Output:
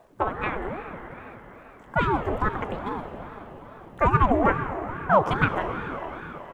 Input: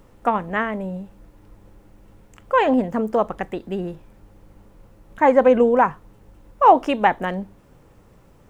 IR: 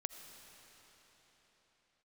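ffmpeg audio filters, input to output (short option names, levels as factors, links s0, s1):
-filter_complex "[0:a]atempo=1.3[s0];[1:a]atrim=start_sample=2205[s1];[s0][s1]afir=irnorm=-1:irlink=0,aeval=exprs='val(0)*sin(2*PI*410*n/s+410*0.65/2.4*sin(2*PI*2.4*n/s))':c=same"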